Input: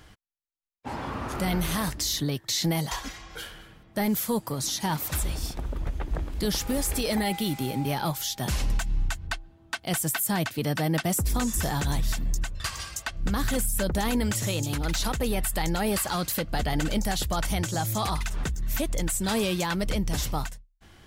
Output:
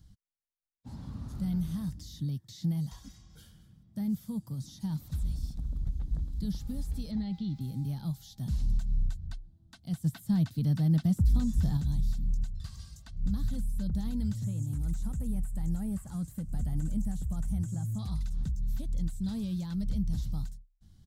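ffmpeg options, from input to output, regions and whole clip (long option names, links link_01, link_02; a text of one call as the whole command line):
ffmpeg -i in.wav -filter_complex "[0:a]asettb=1/sr,asplit=3[link_01][link_02][link_03];[link_01]atrim=end=1.444[link_04];[link_02]atrim=start=1.44:end=4.81,asetpts=PTS-STARTPTS,afade=type=in:duration=0.004:curve=qsin,afade=type=out:start_time=3.366:duration=0.004:curve=qsin,highpass=63,bandreject=frequency=4100:width=10[link_05];[link_03]atrim=start=4.806[link_06];[link_04][link_05]acrossfade=duration=0.004:curve1=hsin:curve2=qsin[link_07];[link_07][link_06]acrossfade=duration=0.004:curve1=qsin:curve2=hsin,asettb=1/sr,asplit=3[link_08][link_09][link_10];[link_08]atrim=end=7.114[link_11];[link_09]atrim=start=7.11:end=7.61,asetpts=PTS-STARTPTS,afade=type=in:duration=0.004:curve=qsin,afade=type=out:start_time=0.496:duration=0.004:curve=qsin,lowpass=frequency=4800:width=0.5412,lowpass=frequency=4800:width=1.3066,aeval=exprs='val(0)*gte(abs(val(0)),0.002)':channel_layout=same[link_12];[link_10]atrim=start=7.606[link_13];[link_11][link_12]acrossfade=duration=0.004:curve1=hsin:curve2=qsin[link_14];[link_14][link_13]acrossfade=duration=0.004:curve1=qsin:curve2=hsin,asettb=1/sr,asplit=3[link_15][link_16][link_17];[link_15]atrim=end=10.044[link_18];[link_16]atrim=start=10.04:end=11.77,asetpts=PTS-STARTPTS,afade=type=in:duration=0.004:curve=qsin,afade=type=out:start_time=1.726:duration=0.004:curve=qsin,acontrast=36,acrusher=bits=8:mix=0:aa=0.5[link_19];[link_17]atrim=start=11.766[link_20];[link_18][link_19]acrossfade=duration=0.004:curve1=hsin:curve2=qsin[link_21];[link_21][link_20]acrossfade=duration=0.004:curve1=qsin:curve2=hsin,asettb=1/sr,asplit=3[link_22][link_23][link_24];[link_22]atrim=end=14.444[link_25];[link_23]atrim=start=14.44:end=17.99,asetpts=PTS-STARTPTS,afade=type=in:duration=0.004:curve=qsin,afade=type=out:start_time=3.546:duration=0.004:curve=qsin,acrossover=split=3000[link_26][link_27];[link_27]acompressor=threshold=-41dB:ratio=4:attack=1:release=60[link_28];[link_26][link_28]amix=inputs=2:normalize=0,highshelf=frequency=5800:width_type=q:width=3:gain=12[link_29];[link_24]atrim=start=17.986[link_30];[link_25][link_29]acrossfade=duration=0.004:curve1=hsin:curve2=qsin[link_31];[link_31][link_30]acrossfade=duration=0.004:curve1=qsin:curve2=hsin,acrossover=split=3600[link_32][link_33];[link_33]acompressor=threshold=-43dB:ratio=4:attack=1:release=60[link_34];[link_32][link_34]amix=inputs=2:normalize=0,firequalizer=gain_entry='entry(190,0);entry(370,-21);entry(2500,-26);entry(3900,-10)':delay=0.05:min_phase=1,volume=-2dB" out.wav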